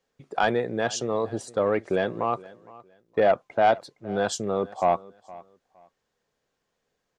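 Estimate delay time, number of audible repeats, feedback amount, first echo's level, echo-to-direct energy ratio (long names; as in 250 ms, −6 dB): 464 ms, 2, 23%, −21.0 dB, −21.0 dB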